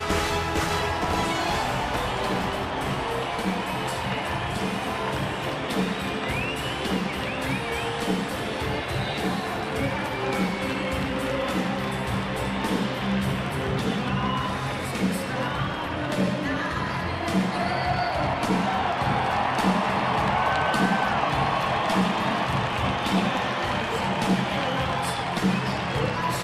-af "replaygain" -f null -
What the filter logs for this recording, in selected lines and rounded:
track_gain = +8.1 dB
track_peak = 0.250